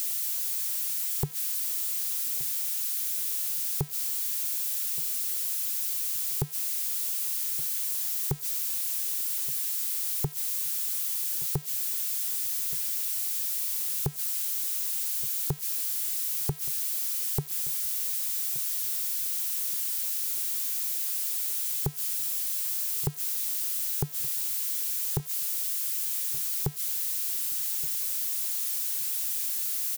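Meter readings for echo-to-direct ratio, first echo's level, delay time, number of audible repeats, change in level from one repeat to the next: −19.5 dB, −19.5 dB, 1,173 ms, 2, −12.5 dB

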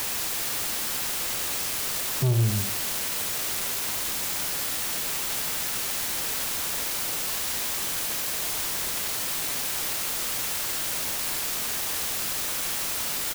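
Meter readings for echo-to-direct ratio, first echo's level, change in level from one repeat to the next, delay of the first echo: −10.0 dB, −10.0 dB, repeats not evenly spaced, 78 ms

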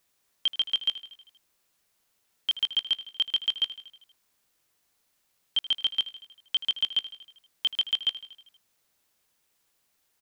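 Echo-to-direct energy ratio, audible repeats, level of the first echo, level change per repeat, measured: −13.0 dB, 5, −15.0 dB, −4.5 dB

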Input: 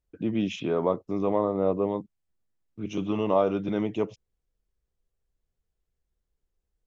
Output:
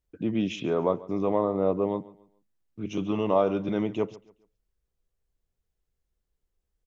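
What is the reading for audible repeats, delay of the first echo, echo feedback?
2, 139 ms, 32%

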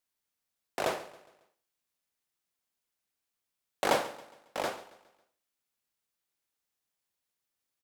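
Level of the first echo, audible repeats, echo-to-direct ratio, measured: −18.0 dB, 3, −17.0 dB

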